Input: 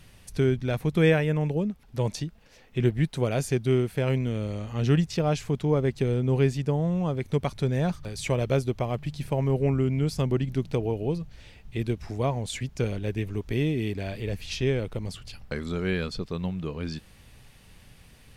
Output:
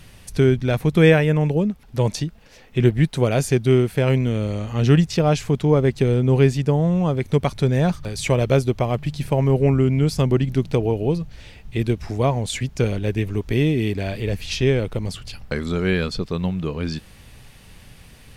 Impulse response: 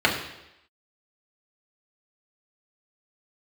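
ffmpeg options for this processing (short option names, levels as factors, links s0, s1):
-af "volume=2.24"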